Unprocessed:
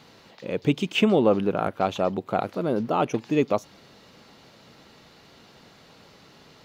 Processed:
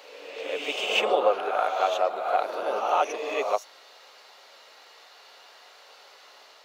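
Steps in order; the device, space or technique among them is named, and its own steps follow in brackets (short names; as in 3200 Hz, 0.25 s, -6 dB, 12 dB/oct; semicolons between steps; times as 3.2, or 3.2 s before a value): ghost voice (reverse; reverb RT60 1.5 s, pre-delay 4 ms, DRR 0 dB; reverse; HPF 540 Hz 24 dB/oct)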